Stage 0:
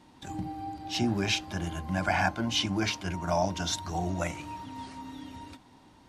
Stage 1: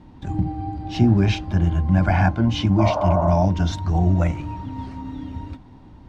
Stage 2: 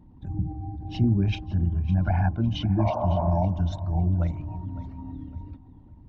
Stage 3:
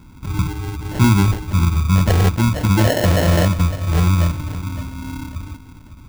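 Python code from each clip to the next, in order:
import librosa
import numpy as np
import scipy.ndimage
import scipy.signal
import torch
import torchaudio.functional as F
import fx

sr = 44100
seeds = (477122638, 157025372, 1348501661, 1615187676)

y1 = fx.riaa(x, sr, side='playback')
y1 = fx.spec_repair(y1, sr, seeds[0], start_s=2.81, length_s=0.47, low_hz=370.0, high_hz=1800.0, source='after')
y1 = fx.peak_eq(y1, sr, hz=9700.0, db=-3.0, octaves=0.67)
y1 = y1 * 10.0 ** (4.0 / 20.0)
y2 = fx.envelope_sharpen(y1, sr, power=1.5)
y2 = fx.echo_feedback(y2, sr, ms=556, feedback_pct=29, wet_db=-16.0)
y2 = y2 * 10.0 ** (-5.5 / 20.0)
y3 = fx.sample_hold(y2, sr, seeds[1], rate_hz=1200.0, jitter_pct=0)
y3 = y3 * 10.0 ** (8.5 / 20.0)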